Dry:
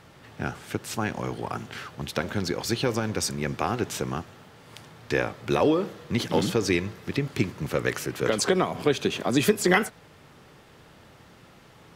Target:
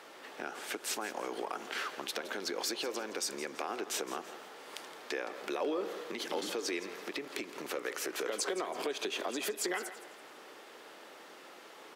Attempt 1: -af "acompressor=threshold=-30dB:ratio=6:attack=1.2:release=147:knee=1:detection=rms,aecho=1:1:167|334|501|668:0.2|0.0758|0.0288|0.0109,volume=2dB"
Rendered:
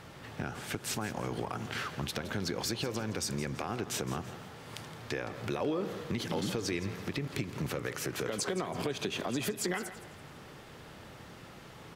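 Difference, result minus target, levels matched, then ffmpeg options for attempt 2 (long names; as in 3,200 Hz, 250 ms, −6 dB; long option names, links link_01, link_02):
250 Hz band +4.5 dB
-af "acompressor=threshold=-30dB:ratio=6:attack=1.2:release=147:knee=1:detection=rms,highpass=frequency=320:width=0.5412,highpass=frequency=320:width=1.3066,aecho=1:1:167|334|501|668:0.2|0.0758|0.0288|0.0109,volume=2dB"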